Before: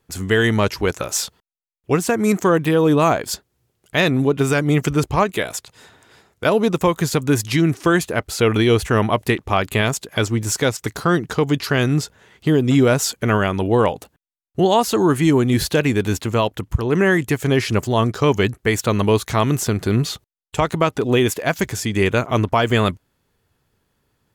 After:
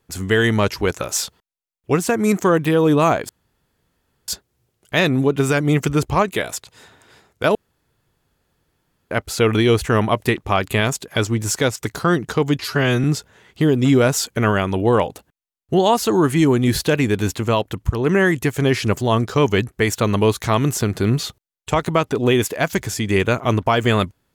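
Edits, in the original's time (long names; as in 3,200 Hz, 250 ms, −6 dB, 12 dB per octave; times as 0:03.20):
0:03.29: splice in room tone 0.99 s
0:06.56–0:08.12: fill with room tone
0:11.60–0:11.90: time-stretch 1.5×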